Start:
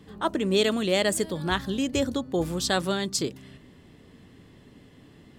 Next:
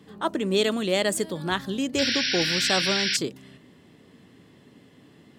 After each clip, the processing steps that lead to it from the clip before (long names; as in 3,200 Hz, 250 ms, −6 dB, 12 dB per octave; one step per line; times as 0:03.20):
high-pass filter 130 Hz 12 dB per octave
sound drawn into the spectrogram noise, 0:01.98–0:03.17, 1,400–5,800 Hz −26 dBFS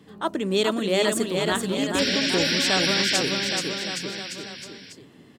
bouncing-ball delay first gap 430 ms, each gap 0.9×, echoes 5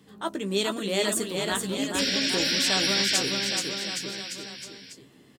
high-shelf EQ 4,400 Hz +8 dB
double-tracking delay 15 ms −8 dB
level −5.5 dB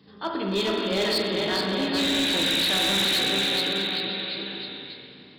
hearing-aid frequency compression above 3,500 Hz 4 to 1
spring reverb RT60 2.5 s, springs 36/56 ms, chirp 80 ms, DRR −1 dB
hard clipping −20 dBFS, distortion −11 dB